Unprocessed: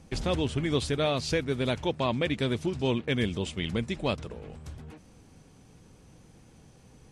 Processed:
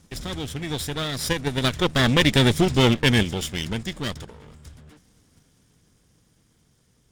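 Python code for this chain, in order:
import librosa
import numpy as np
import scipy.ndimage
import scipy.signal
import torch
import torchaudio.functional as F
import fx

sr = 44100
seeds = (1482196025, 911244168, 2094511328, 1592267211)

p1 = fx.lower_of_two(x, sr, delay_ms=0.56)
p2 = fx.doppler_pass(p1, sr, speed_mps=8, closest_m=4.0, pass_at_s=2.58)
p3 = fx.level_steps(p2, sr, step_db=17)
p4 = p2 + F.gain(torch.from_numpy(p3), -1.0).numpy()
p5 = fx.high_shelf(p4, sr, hz=3000.0, db=8.5)
y = F.gain(torch.from_numpy(p5), 8.0).numpy()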